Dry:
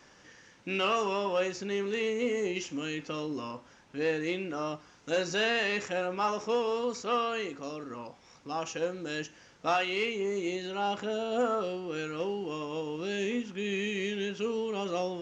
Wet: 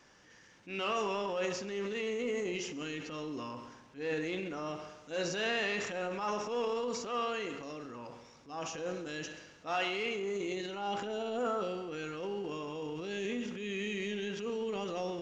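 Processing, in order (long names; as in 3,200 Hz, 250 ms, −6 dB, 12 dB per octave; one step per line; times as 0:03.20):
echo machine with several playback heads 67 ms, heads first and second, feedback 57%, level −17 dB
transient designer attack −8 dB, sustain +6 dB
level −4.5 dB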